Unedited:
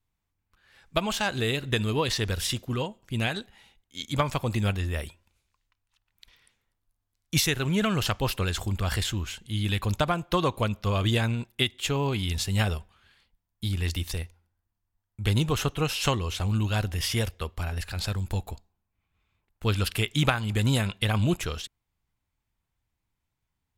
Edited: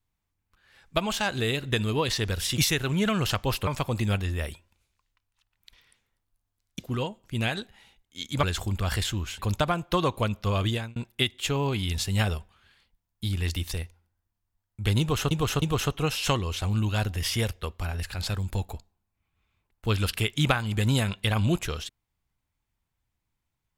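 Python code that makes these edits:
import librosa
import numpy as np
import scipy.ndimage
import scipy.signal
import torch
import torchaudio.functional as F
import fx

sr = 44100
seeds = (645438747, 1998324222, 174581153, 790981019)

y = fx.edit(x, sr, fx.swap(start_s=2.58, length_s=1.64, other_s=7.34, other_length_s=1.09),
    fx.cut(start_s=9.39, length_s=0.4),
    fx.fade_out_span(start_s=11.01, length_s=0.35),
    fx.repeat(start_s=15.4, length_s=0.31, count=3), tone=tone)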